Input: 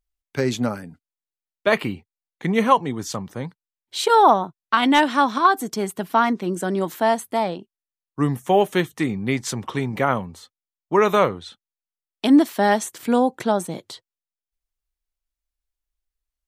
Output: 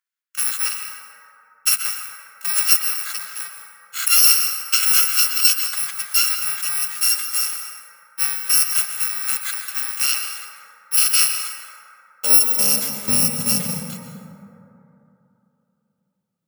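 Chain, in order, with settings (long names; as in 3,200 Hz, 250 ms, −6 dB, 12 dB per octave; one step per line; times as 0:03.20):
samples in bit-reversed order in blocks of 128 samples
high-pass filter sweep 1,500 Hz → 190 Hz, 0:11.30–0:12.99
dense smooth reverb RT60 3.1 s, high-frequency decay 0.3×, pre-delay 110 ms, DRR 3.5 dB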